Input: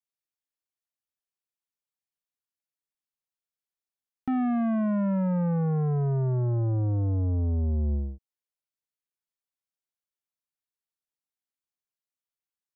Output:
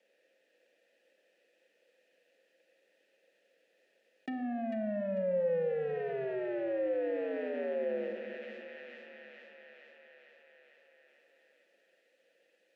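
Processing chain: half-waves squared off; steep high-pass 190 Hz 36 dB/oct; treble ducked by the level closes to 1000 Hz, closed at -24.5 dBFS; vowel filter e; tilt shelf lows +5 dB, about 860 Hz; on a send: thin delay 0.446 s, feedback 47%, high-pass 1900 Hz, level -5 dB; on the sum: shoebox room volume 1700 m³, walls mixed, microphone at 0.73 m; fast leveller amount 50%

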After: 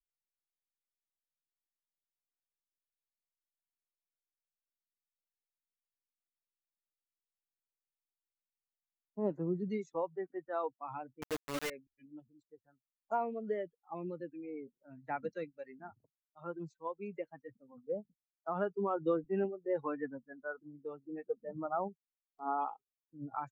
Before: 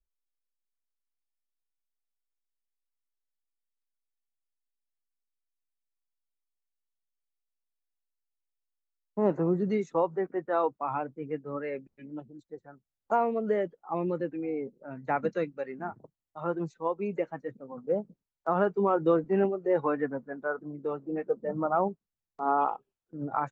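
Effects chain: per-bin expansion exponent 1.5; 11.22–11.7 companded quantiser 2-bit; gain -6.5 dB

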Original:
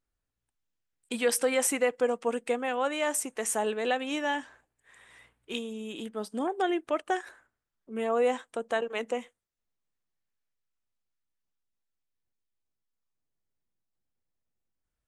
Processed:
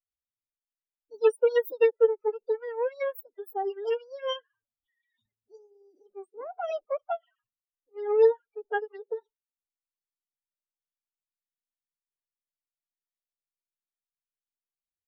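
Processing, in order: loudest bins only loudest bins 16; formant-preserving pitch shift +10.5 st; upward expander 2.5:1, over -42 dBFS; gain +8 dB

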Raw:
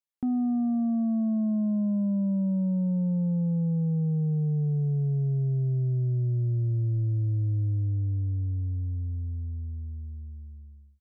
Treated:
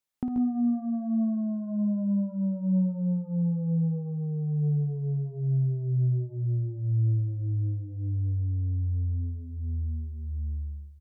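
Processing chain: compressor, threshold -34 dBFS, peak gain reduction 8.5 dB; on a send: tapped delay 54/134/150 ms -8.5/-7/-10.5 dB; on the sum: gain +5.5 dB

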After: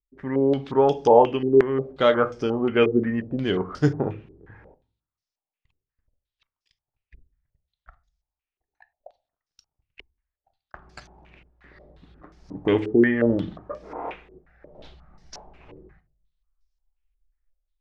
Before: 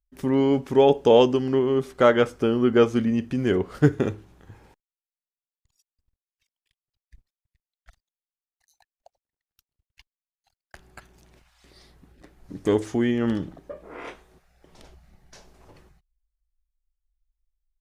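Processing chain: AGC gain up to 8.5 dB; shoebox room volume 290 m³, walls furnished, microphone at 0.47 m; stepped low-pass 5.6 Hz 400–5400 Hz; gain -7.5 dB

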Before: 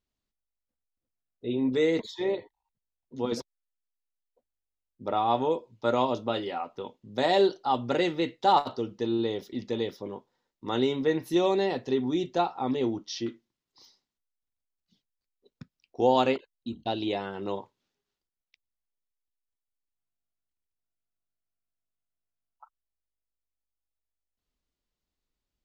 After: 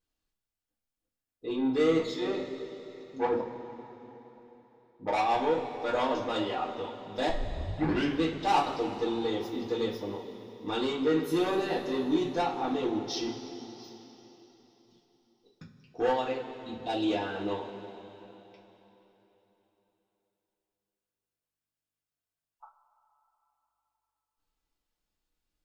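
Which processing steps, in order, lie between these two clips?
3.17–5.2 synth low-pass 880 Hz, resonance Q 4.9; 16.11–16.89 compressor 2.5:1, threshold -34 dBFS, peak gain reduction 10.5 dB; soft clip -23 dBFS, distortion -10 dB; 7.29 tape start 0.94 s; two-slope reverb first 0.24 s, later 3.7 s, from -18 dB, DRR -6 dB; gain -4.5 dB

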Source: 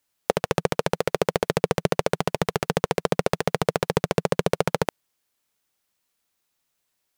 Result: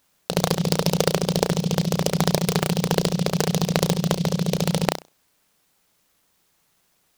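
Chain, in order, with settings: bell 170 Hz +9 dB 0.34 oct; negative-ratio compressor -24 dBFS, ratio -0.5; on a send: flutter echo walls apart 5.6 m, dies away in 0.23 s; on the sum: maximiser +6 dB; noise-modulated delay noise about 4000 Hz, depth 0.12 ms

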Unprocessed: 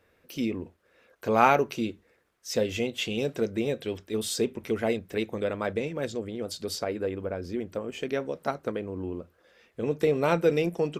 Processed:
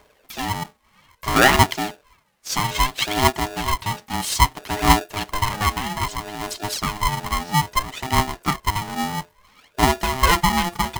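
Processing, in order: phaser 0.61 Hz, delay 3.6 ms, feedback 74%; polarity switched at an audio rate 520 Hz; gain +4 dB

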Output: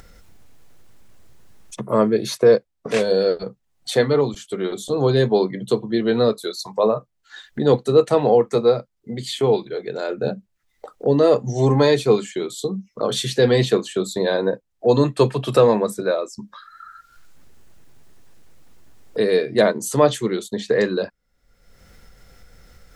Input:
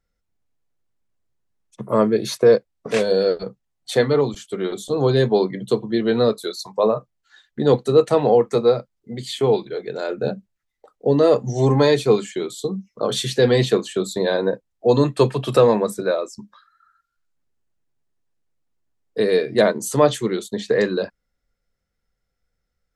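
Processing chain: upward compressor, threshold -24 dBFS

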